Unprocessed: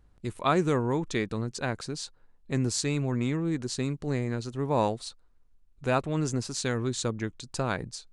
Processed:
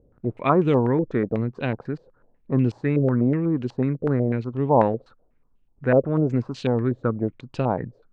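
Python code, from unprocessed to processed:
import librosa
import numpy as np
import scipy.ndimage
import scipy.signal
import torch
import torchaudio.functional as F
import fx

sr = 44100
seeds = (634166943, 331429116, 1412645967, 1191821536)

y = fx.graphic_eq_10(x, sr, hz=(125, 250, 500), db=(8, 8, 7))
y = fx.filter_held_lowpass(y, sr, hz=8.1, low_hz=520.0, high_hz=2900.0)
y = y * librosa.db_to_amplitude(-3.0)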